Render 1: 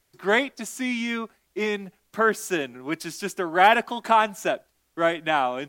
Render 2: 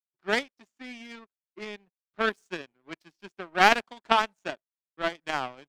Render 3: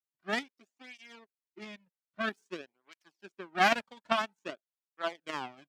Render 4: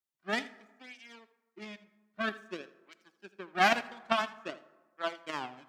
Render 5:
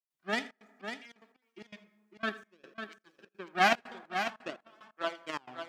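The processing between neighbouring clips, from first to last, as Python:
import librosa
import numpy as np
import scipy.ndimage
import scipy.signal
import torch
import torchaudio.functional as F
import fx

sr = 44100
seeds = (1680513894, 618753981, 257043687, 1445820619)

y1 = fx.env_lowpass(x, sr, base_hz=3000.0, full_db=-15.0)
y1 = fx.power_curve(y1, sr, exponent=2.0)
y1 = y1 * librosa.db_to_amplitude(3.0)
y2 = fx.flanger_cancel(y1, sr, hz=0.51, depth_ms=3.0)
y2 = y2 * librosa.db_to_amplitude(-3.0)
y3 = y2 + 10.0 ** (-18.0 / 20.0) * np.pad(y2, (int(80 * sr / 1000.0), 0))[:len(y2)]
y3 = fx.rev_plate(y3, sr, seeds[0], rt60_s=1.3, hf_ratio=0.5, predelay_ms=0, drr_db=15.5)
y4 = fx.step_gate(y3, sr, bpm=148, pattern='.xxxx.xx..x.x.xx', floor_db=-24.0, edge_ms=4.5)
y4 = y4 + 10.0 ** (-8.0 / 20.0) * np.pad(y4, (int(549 * sr / 1000.0), 0))[:len(y4)]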